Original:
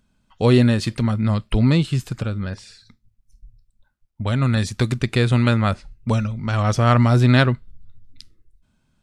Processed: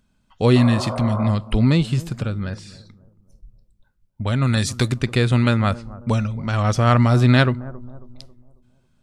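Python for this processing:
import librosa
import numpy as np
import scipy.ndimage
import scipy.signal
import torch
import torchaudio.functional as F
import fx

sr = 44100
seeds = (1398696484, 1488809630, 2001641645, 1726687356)

y = fx.spec_repair(x, sr, seeds[0], start_s=0.59, length_s=0.68, low_hz=360.0, high_hz=1600.0, source='after')
y = fx.high_shelf(y, sr, hz=3700.0, db=8.0, at=(4.47, 4.88))
y = fx.echo_bbd(y, sr, ms=272, stages=2048, feedback_pct=41, wet_db=-18.0)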